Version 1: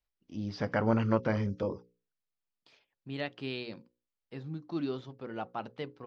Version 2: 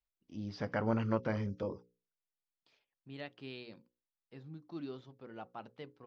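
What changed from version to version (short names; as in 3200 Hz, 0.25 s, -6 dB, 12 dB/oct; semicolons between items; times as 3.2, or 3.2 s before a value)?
first voice -5.0 dB; second voice -9.0 dB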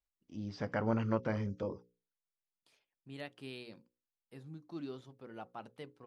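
first voice: add air absorption 67 m; master: remove LPF 5400 Hz 24 dB/oct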